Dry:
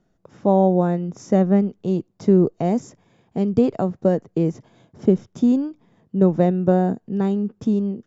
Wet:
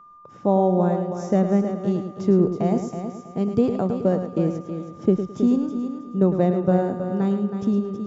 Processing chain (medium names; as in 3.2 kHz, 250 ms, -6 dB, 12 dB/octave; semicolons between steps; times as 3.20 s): multi-head delay 107 ms, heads first and third, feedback 43%, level -9 dB; whistle 1.2 kHz -43 dBFS; trim -2.5 dB